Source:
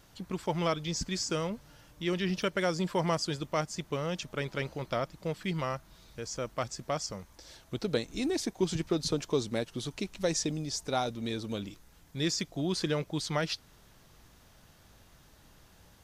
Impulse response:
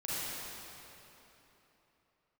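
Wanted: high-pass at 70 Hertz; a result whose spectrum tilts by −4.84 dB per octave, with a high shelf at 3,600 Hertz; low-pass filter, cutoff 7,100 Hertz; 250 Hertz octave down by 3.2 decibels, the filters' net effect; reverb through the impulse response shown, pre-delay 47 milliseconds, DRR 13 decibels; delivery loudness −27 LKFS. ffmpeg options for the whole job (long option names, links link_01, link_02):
-filter_complex "[0:a]highpass=70,lowpass=7100,equalizer=frequency=250:width_type=o:gain=-5,highshelf=frequency=3600:gain=-4.5,asplit=2[link_01][link_02];[1:a]atrim=start_sample=2205,adelay=47[link_03];[link_02][link_03]afir=irnorm=-1:irlink=0,volume=-18.5dB[link_04];[link_01][link_04]amix=inputs=2:normalize=0,volume=8dB"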